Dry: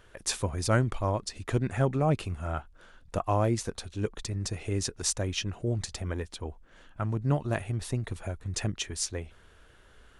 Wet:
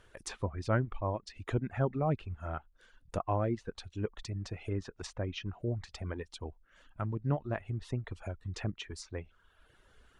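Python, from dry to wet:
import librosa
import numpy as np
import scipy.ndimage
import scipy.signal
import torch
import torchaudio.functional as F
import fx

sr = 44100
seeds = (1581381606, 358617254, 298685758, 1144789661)

y = fx.dereverb_blind(x, sr, rt60_s=0.82)
y = fx.env_lowpass_down(y, sr, base_hz=2000.0, full_db=-27.5)
y = y * librosa.db_to_amplitude(-4.0)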